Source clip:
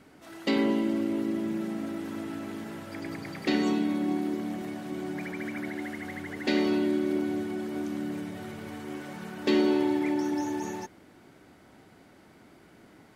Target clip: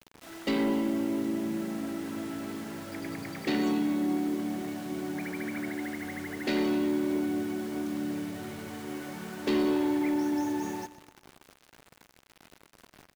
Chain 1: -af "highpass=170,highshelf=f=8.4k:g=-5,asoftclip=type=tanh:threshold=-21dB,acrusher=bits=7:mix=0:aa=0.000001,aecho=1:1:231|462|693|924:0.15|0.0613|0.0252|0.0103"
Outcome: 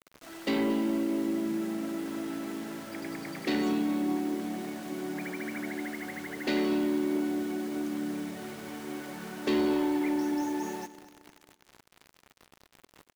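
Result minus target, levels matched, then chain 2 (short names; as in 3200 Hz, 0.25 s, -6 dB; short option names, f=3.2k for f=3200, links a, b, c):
echo 0.105 s late; 125 Hz band -2.5 dB
-af "highshelf=f=8.4k:g=-5,asoftclip=type=tanh:threshold=-21dB,acrusher=bits=7:mix=0:aa=0.000001,aecho=1:1:126|252|378|504:0.15|0.0613|0.0252|0.0103"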